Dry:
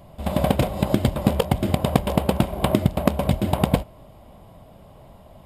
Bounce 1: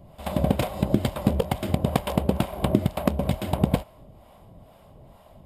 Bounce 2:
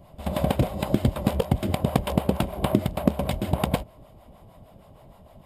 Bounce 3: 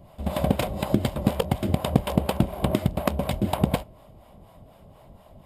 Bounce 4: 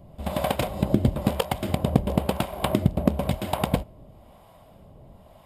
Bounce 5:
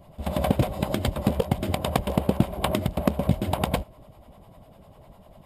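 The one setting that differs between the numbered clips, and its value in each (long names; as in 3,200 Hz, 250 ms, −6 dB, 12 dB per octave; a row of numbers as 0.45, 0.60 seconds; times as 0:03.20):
two-band tremolo in antiphase, speed: 2.2, 6.5, 4.1, 1, 10 Hertz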